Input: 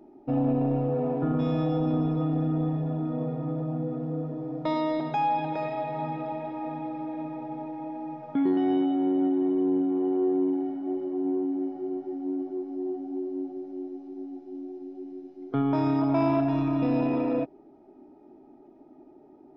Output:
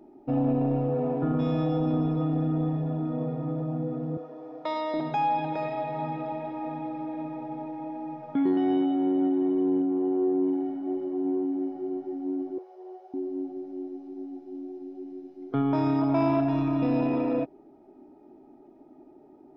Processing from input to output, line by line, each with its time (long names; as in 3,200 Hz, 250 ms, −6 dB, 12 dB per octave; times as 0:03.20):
0:04.17–0:04.94: high-pass filter 520 Hz
0:09.82–0:10.44: low-pass filter 1,700 Hz 6 dB per octave
0:12.58–0:13.14: Butterworth high-pass 400 Hz 96 dB per octave